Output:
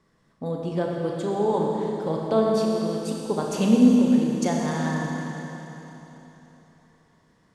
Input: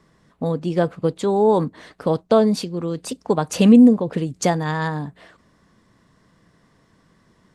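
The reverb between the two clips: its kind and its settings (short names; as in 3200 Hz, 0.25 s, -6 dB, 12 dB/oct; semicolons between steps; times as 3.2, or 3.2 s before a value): Schroeder reverb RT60 3.7 s, combs from 28 ms, DRR -1.5 dB; gain -8.5 dB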